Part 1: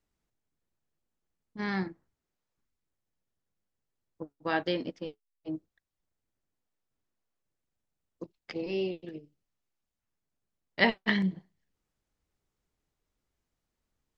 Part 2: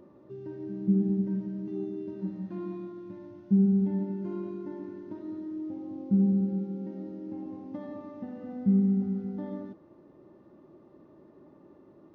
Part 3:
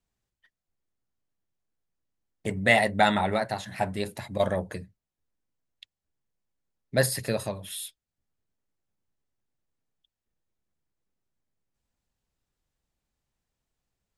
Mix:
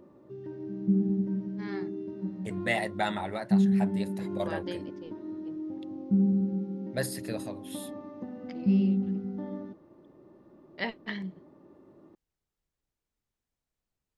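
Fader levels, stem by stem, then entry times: −9.0, −0.5, −8.5 decibels; 0.00, 0.00, 0.00 seconds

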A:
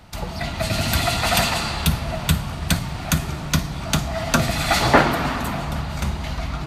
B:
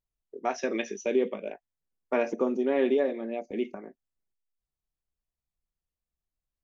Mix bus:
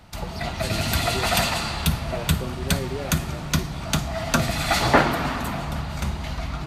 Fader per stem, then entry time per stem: −2.5, −8.0 decibels; 0.00, 0.00 seconds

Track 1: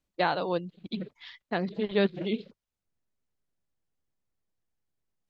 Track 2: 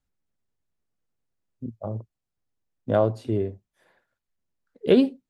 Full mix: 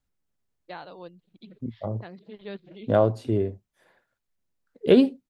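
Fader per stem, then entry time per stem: −13.5, +1.0 decibels; 0.50, 0.00 seconds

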